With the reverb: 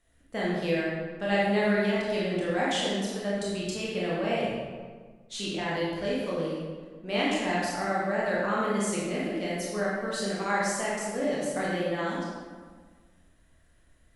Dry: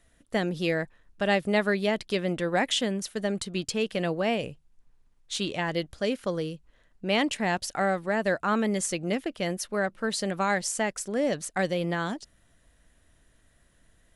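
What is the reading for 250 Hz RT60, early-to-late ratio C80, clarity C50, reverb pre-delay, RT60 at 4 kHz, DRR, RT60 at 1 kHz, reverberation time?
1.8 s, 1.0 dB, -2.0 dB, 19 ms, 1.0 s, -7.0 dB, 1.5 s, 1.5 s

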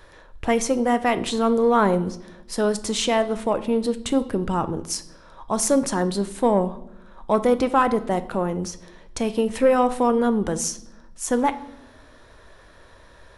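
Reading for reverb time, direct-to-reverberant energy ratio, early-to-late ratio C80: 0.80 s, 11.0 dB, 19.0 dB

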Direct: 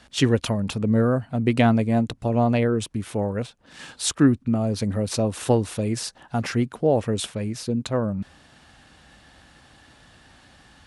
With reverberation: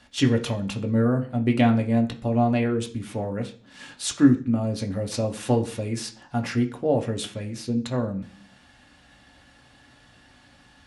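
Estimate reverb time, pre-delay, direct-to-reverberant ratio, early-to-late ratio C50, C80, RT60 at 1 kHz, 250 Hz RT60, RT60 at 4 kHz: 0.45 s, 3 ms, 1.5 dB, 13.5 dB, 18.5 dB, 0.40 s, 0.60 s, 0.45 s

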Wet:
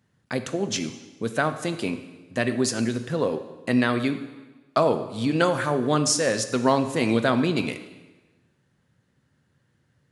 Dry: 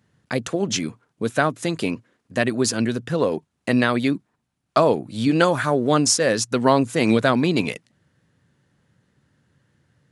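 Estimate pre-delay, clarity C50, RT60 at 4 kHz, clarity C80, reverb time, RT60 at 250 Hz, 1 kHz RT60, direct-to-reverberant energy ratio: 4 ms, 11.0 dB, 1.1 s, 13.0 dB, 1.2 s, 1.2 s, 1.2 s, 8.5 dB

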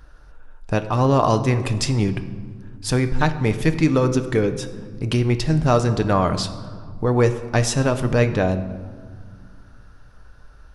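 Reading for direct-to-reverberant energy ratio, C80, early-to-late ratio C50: 8.0 dB, 13.5 dB, 11.5 dB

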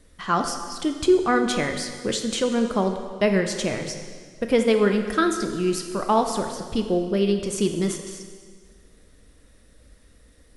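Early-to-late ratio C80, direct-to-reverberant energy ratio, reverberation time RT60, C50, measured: 8.0 dB, 5.0 dB, 1.8 s, 7.0 dB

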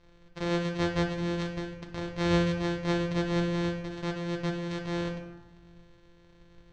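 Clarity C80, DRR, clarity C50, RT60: 9.5 dB, 2.5 dB, 6.5 dB, 1.2 s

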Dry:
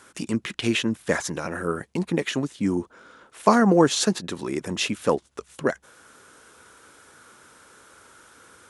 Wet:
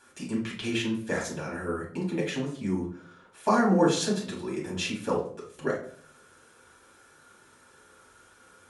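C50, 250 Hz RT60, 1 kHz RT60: 6.0 dB, 0.65 s, 0.45 s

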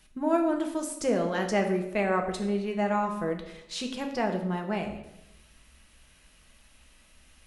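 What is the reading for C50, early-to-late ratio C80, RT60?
8.0 dB, 10.5 dB, 0.90 s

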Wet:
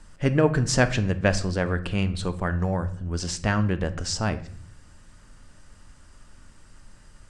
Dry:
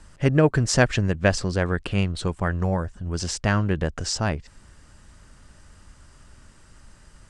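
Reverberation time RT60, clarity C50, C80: 0.55 s, 15.0 dB, 18.5 dB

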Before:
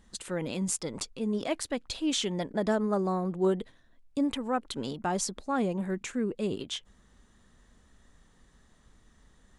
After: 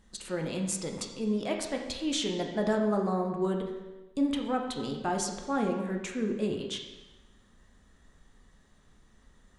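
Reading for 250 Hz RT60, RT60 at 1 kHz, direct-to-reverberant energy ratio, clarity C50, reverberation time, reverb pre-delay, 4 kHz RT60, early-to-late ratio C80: 1.1 s, 1.1 s, 2.0 dB, 5.0 dB, 1.1 s, 5 ms, 1.0 s, 7.0 dB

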